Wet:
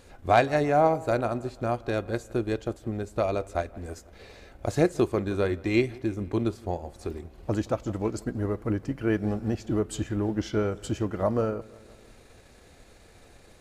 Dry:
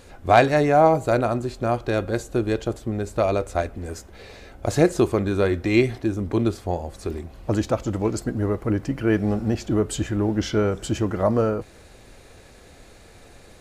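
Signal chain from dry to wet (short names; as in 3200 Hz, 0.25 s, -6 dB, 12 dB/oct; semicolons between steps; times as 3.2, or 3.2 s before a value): dark delay 0.166 s, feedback 53%, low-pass 3200 Hz, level -19 dB; transient shaper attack +1 dB, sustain -4 dB; gain -5.5 dB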